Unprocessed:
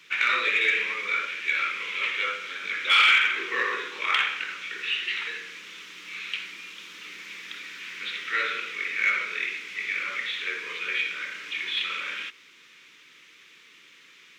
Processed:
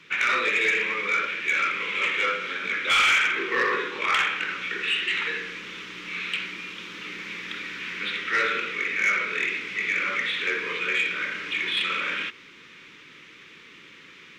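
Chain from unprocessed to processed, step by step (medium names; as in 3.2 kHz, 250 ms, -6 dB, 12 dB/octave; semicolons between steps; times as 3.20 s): low-pass 2.4 kHz 6 dB/octave; bass shelf 300 Hz +9.5 dB; in parallel at -1 dB: gain riding within 4 dB 0.5 s; on the sum: saturation -15 dBFS, distortion -16 dB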